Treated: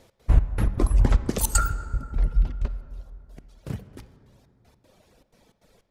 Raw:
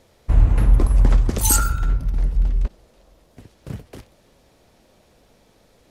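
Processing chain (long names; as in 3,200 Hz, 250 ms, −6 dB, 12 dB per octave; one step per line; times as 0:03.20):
reverb reduction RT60 1.3 s
gate pattern "x.xx..x.xxxx.x" 155 BPM −24 dB
convolution reverb RT60 2.6 s, pre-delay 22 ms, DRR 11.5 dB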